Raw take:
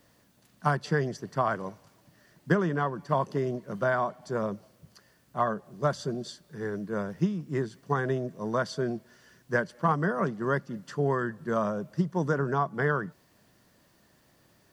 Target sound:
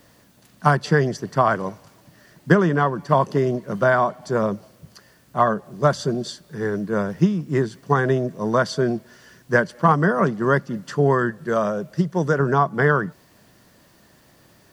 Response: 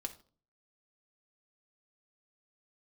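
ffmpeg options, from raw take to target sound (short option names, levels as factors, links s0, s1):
-filter_complex "[0:a]asettb=1/sr,asplit=3[s0][s1][s2];[s0]atrim=end=11.304[s3];[s1]atrim=start=11.3:end=12.4,asetpts=PTS-STARTPTS,afade=t=in:d=0.004:c=qsin,afade=t=out:st=1.096:d=0.004:c=qsin,equalizer=f=100:t=o:w=0.67:g=-6,equalizer=f=250:t=o:w=0.67:g=-6,equalizer=f=1000:t=o:w=0.67:g=-5[s4];[s2]atrim=start=12.396[s5];[s3][s4]acrossfade=d=0.004:c1=hsin:c2=qsin[s6];[s6][s5]acrossfade=d=0.004:c1=qsin:c2=hsin,volume=2.82"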